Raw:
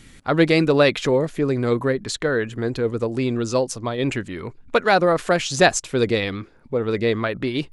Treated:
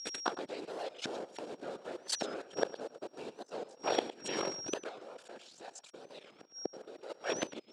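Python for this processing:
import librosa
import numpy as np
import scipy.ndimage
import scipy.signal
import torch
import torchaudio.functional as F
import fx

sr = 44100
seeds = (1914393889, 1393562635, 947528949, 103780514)

y = fx.cycle_switch(x, sr, every=3, mode='muted')
y = fx.peak_eq(y, sr, hz=2200.0, db=-3.5, octaves=1.1)
y = fx.level_steps(y, sr, step_db=24)
y = fx.leveller(y, sr, passes=3)
y = fx.over_compress(y, sr, threshold_db=-24.0, ratio=-1.0, at=(4.9, 7.1))
y = fx.whisperise(y, sr, seeds[0])
y = y + 10.0 ** (-49.0 / 20.0) * np.sin(2.0 * np.pi * 5600.0 * np.arange(len(y)) / sr)
y = fx.gate_flip(y, sr, shuts_db=-24.0, range_db=-32)
y = fx.cabinet(y, sr, low_hz=430.0, low_slope=12, high_hz=7900.0, hz=(1100.0, 2000.0, 6000.0), db=(-6, -8, -6))
y = y + 10.0 ** (-14.5 / 20.0) * np.pad(y, (int(110 * sr / 1000.0), 0))[:len(y)]
y = fx.record_warp(y, sr, rpm=45.0, depth_cents=160.0)
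y = y * librosa.db_to_amplitude(11.0)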